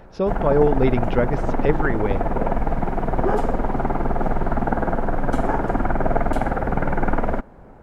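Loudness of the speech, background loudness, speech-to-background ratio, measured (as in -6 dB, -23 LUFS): -22.5 LUFS, -24.0 LUFS, 1.5 dB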